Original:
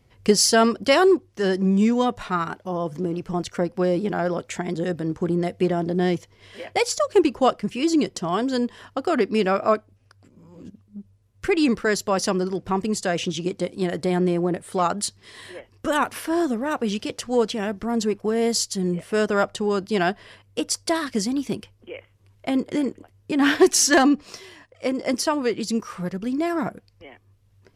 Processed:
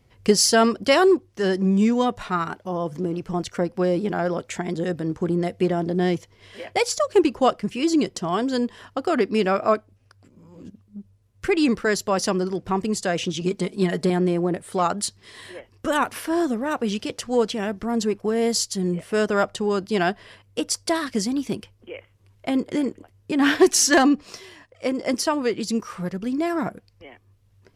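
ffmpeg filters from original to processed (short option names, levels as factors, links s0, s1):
-filter_complex "[0:a]asettb=1/sr,asplit=3[s0][s1][s2];[s0]atrim=end=13.414[s3];[s1]atrim=start=13.41:end=14.1,asetpts=PTS-STARTPTS,afade=t=in:d=0.004:c=qsin,afade=t=out:st=0.686:d=0.004:c=qsin,aecho=1:1:4.8:0.84,atrim=end_sample=30429[s4];[s2]atrim=start=14.096[s5];[s3][s4]acrossfade=d=0.004:c1=hsin:c2=qsin[s6];[s6][s5]acrossfade=d=0.004:c1=qsin:c2=hsin"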